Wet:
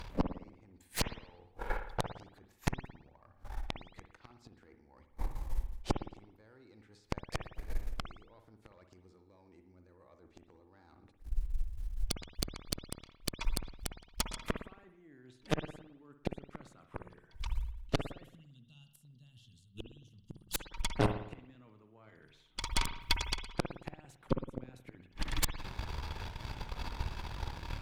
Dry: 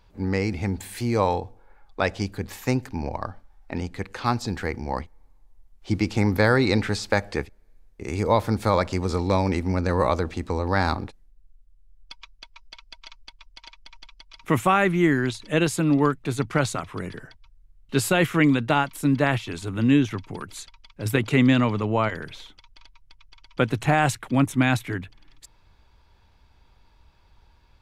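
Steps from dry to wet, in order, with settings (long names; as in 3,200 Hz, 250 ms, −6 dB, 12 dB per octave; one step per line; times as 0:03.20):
gain on a spectral selection 0:18.24–0:20.72, 250–2,700 Hz −27 dB
dynamic equaliser 340 Hz, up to +6 dB, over −37 dBFS, Q 2.1
reversed playback
downward compressor 12 to 1, threshold −34 dBFS, peak gain reduction 23.5 dB
reversed playback
gate with flip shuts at −34 dBFS, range −37 dB
harmonic generator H 8 −8 dB, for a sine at −29.5 dBFS
on a send: convolution reverb, pre-delay 55 ms, DRR 7 dB
on the sum: level +14 dB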